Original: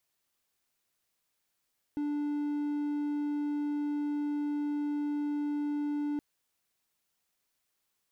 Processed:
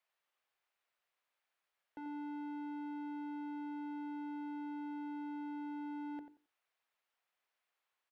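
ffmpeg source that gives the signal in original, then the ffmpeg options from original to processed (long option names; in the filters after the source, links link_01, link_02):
-f lavfi -i "aevalsrc='0.0422*(1-4*abs(mod(293*t+0.25,1)-0.5))':duration=4.22:sample_rate=44100"
-filter_complex "[0:a]acrossover=split=470 3200:gain=0.112 1 0.158[link_01][link_02][link_03];[link_01][link_02][link_03]amix=inputs=3:normalize=0,bandreject=frequency=50:width_type=h:width=6,bandreject=frequency=100:width_type=h:width=6,bandreject=frequency=150:width_type=h:width=6,bandreject=frequency=200:width_type=h:width=6,bandreject=frequency=250:width_type=h:width=6,bandreject=frequency=300:width_type=h:width=6,bandreject=frequency=350:width_type=h:width=6,bandreject=frequency=400:width_type=h:width=6,bandreject=frequency=450:width_type=h:width=6,asplit=2[link_04][link_05];[link_05]adelay=89,lowpass=frequency=1800:poles=1,volume=-9.5dB,asplit=2[link_06][link_07];[link_07]adelay=89,lowpass=frequency=1800:poles=1,volume=0.18,asplit=2[link_08][link_09];[link_09]adelay=89,lowpass=frequency=1800:poles=1,volume=0.18[link_10];[link_06][link_08][link_10]amix=inputs=3:normalize=0[link_11];[link_04][link_11]amix=inputs=2:normalize=0"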